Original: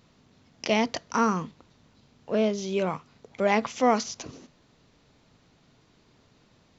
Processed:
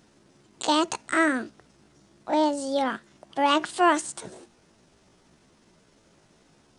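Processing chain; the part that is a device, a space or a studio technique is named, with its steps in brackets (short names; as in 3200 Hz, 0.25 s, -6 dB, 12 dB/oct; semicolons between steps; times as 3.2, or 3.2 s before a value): chipmunk voice (pitch shift +6 st); gain +1.5 dB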